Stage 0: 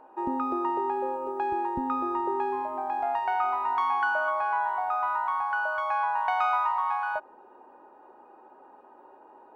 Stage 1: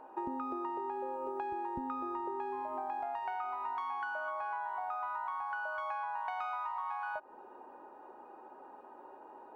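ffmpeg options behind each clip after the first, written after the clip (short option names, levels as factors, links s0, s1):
-af "acompressor=threshold=0.0178:ratio=10"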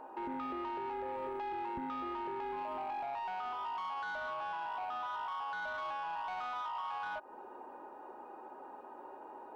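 -af "alimiter=level_in=2.66:limit=0.0631:level=0:latency=1:release=12,volume=0.376,asoftclip=type=tanh:threshold=0.0133,volume=1.41"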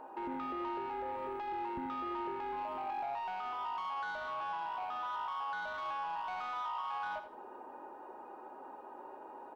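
-af "aecho=1:1:83|166|249:0.299|0.0836|0.0234"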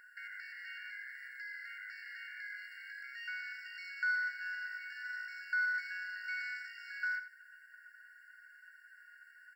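-af "asuperstop=centerf=2500:order=20:qfactor=4.6,afftfilt=real='re*eq(mod(floor(b*sr/1024/1400),2),1)':imag='im*eq(mod(floor(b*sr/1024/1400),2),1)':win_size=1024:overlap=0.75,volume=3.35"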